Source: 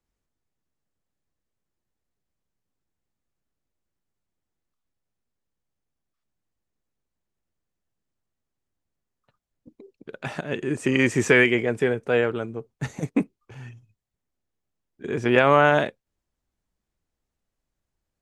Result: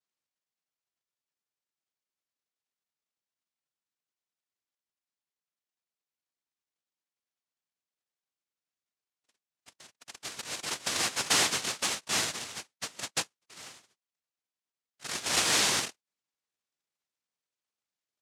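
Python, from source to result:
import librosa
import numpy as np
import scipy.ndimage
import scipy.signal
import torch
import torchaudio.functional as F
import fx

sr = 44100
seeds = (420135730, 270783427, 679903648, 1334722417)

y = fx.dynamic_eq(x, sr, hz=210.0, q=0.79, threshold_db=-31.0, ratio=4.0, max_db=-4)
y = fx.noise_vocoder(y, sr, seeds[0], bands=1)
y = y * 10.0 ** (-8.0 / 20.0)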